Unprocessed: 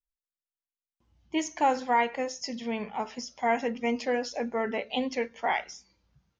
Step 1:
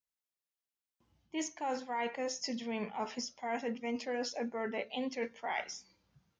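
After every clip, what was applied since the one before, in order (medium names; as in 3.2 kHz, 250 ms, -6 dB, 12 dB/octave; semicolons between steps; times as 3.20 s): high-pass 100 Hz 12 dB/octave; reverse; compression 10:1, threshold -33 dBFS, peak gain reduction 14 dB; reverse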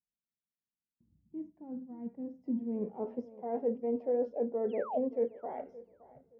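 painted sound fall, 4.69–4.98 s, 570–3500 Hz -31 dBFS; tape echo 571 ms, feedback 27%, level -18 dB, low-pass 2.4 kHz; low-pass sweep 210 Hz -> 500 Hz, 2.16–3.16 s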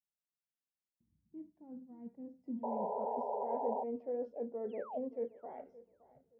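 painted sound noise, 2.63–3.84 s, 400–1000 Hz -30 dBFS; trim -7.5 dB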